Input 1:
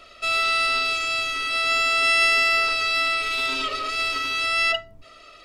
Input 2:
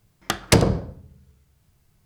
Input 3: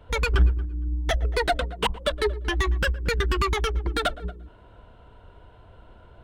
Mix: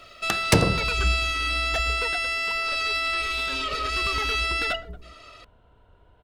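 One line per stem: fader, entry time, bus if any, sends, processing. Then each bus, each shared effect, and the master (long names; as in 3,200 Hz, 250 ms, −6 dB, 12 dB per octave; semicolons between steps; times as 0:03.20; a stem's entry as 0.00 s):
0.0 dB, 0.00 s, no send, brickwall limiter −19.5 dBFS, peak gain reduction 10 dB
−3.0 dB, 0.00 s, no send, no processing
0:01.93 −6 dB → 0:02.31 −18.5 dB → 0:03.53 −18.5 dB → 0:04.18 −7.5 dB, 0.65 s, no send, no processing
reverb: not used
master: no processing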